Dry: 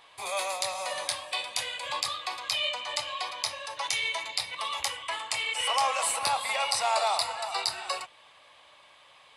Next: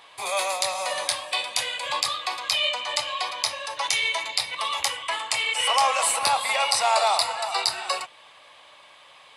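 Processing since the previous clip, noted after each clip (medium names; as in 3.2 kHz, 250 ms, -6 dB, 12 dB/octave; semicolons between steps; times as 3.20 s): high-pass 120 Hz 6 dB/octave; trim +5.5 dB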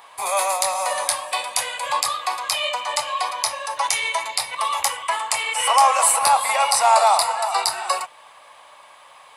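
FFT filter 340 Hz 0 dB, 930 Hz +9 dB, 3.5 kHz -2 dB, 13 kHz +12 dB; trim -1 dB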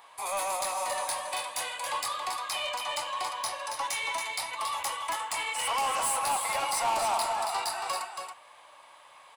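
saturation -18 dBFS, distortion -9 dB; feedback comb 310 Hz, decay 0.44 s, harmonics odd, mix 60%; delay 277 ms -6 dB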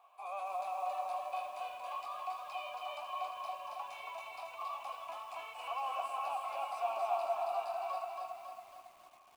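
vowel filter a; companded quantiser 8-bit; bit-crushed delay 274 ms, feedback 55%, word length 10-bit, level -4 dB; trim -1.5 dB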